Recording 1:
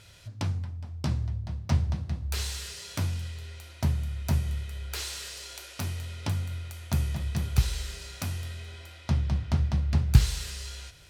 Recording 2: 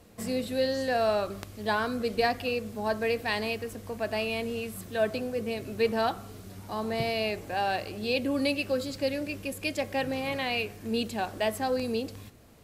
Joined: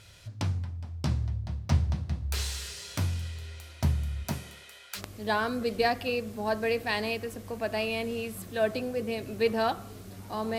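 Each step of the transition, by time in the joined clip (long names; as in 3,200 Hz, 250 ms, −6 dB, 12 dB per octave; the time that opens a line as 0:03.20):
recording 1
0:04.23–0:05.02: high-pass filter 140 Hz → 1,100 Hz
0:04.98: continue with recording 2 from 0:01.37, crossfade 0.08 s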